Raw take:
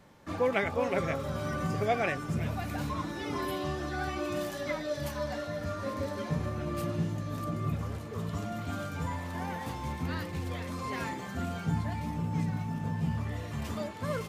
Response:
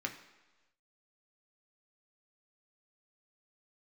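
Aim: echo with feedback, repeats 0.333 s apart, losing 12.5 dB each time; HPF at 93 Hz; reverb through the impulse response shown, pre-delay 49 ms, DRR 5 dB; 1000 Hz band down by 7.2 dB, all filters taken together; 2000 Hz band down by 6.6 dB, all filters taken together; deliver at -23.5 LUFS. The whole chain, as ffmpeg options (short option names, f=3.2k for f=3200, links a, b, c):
-filter_complex "[0:a]highpass=93,equalizer=f=1k:t=o:g=-8.5,equalizer=f=2k:t=o:g=-5.5,aecho=1:1:333|666|999:0.237|0.0569|0.0137,asplit=2[a][b];[1:a]atrim=start_sample=2205,adelay=49[c];[b][c]afir=irnorm=-1:irlink=0,volume=-7dB[d];[a][d]amix=inputs=2:normalize=0,volume=11dB"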